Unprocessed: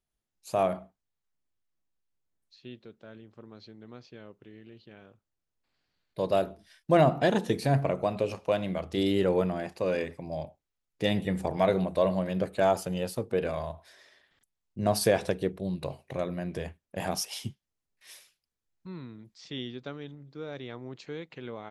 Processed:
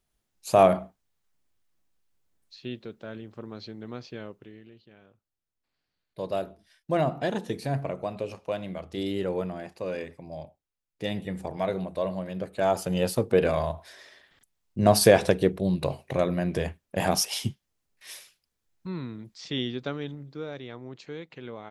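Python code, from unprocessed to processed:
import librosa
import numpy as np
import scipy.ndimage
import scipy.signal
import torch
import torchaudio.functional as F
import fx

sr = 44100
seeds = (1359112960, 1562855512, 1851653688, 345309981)

y = fx.gain(x, sr, db=fx.line((4.22, 8.5), (4.84, -4.0), (12.47, -4.0), (13.05, 7.0), (20.21, 7.0), (20.61, 0.0)))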